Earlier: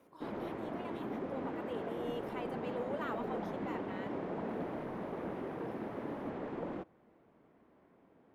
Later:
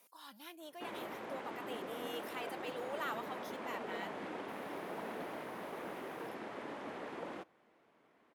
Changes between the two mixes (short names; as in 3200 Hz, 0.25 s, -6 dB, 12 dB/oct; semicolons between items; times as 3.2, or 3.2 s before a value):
background: entry +0.60 s; master: add tilt +4 dB/oct